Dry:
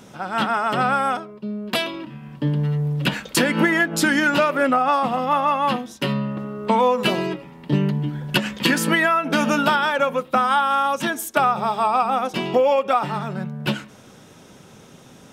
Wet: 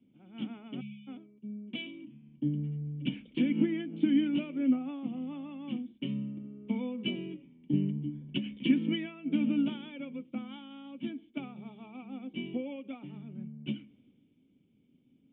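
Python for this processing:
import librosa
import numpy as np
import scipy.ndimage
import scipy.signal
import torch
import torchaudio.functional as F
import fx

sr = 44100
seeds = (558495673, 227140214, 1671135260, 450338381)

y = fx.formant_cascade(x, sr, vowel='i')
y = fx.spec_erase(y, sr, start_s=0.81, length_s=0.26, low_hz=220.0, high_hz=2200.0)
y = fx.band_widen(y, sr, depth_pct=40)
y = y * 10.0 ** (-3.5 / 20.0)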